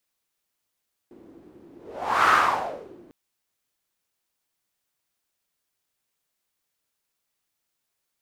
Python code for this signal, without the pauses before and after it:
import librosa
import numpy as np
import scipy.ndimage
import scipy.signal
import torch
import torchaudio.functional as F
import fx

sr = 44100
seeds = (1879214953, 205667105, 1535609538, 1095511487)

y = fx.whoosh(sr, seeds[0], length_s=2.0, peak_s=1.18, rise_s=0.58, fall_s=0.79, ends_hz=320.0, peak_hz=1300.0, q=4.5, swell_db=31.5)